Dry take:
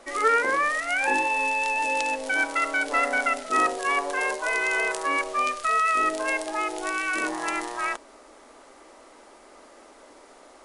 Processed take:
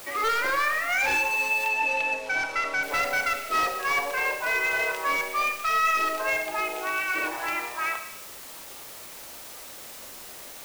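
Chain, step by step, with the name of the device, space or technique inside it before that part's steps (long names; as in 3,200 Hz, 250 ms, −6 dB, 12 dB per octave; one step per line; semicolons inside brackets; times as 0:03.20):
reverb reduction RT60 0.64 s
drive-through speaker (band-pass filter 350–3,600 Hz; parametric band 2,500 Hz +6 dB 0.31 octaves; hard clipping −22 dBFS, distortion −12 dB; white noise bed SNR 15 dB)
0:01.68–0:02.83: high-frequency loss of the air 64 metres
four-comb reverb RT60 0.97 s, combs from 29 ms, DRR 6.5 dB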